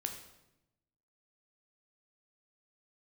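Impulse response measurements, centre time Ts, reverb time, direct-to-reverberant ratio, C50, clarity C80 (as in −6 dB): 21 ms, 0.90 s, 4.0 dB, 7.5 dB, 10.0 dB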